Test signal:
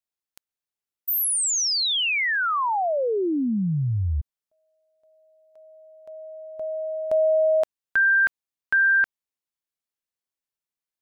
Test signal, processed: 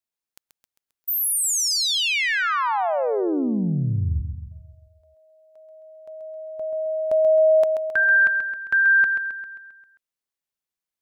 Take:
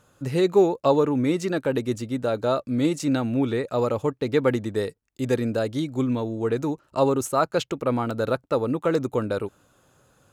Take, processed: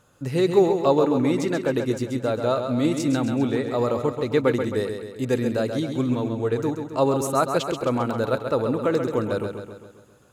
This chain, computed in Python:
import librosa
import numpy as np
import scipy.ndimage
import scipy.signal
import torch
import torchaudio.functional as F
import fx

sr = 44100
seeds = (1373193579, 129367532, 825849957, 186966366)

y = fx.echo_feedback(x, sr, ms=133, feedback_pct=54, wet_db=-7)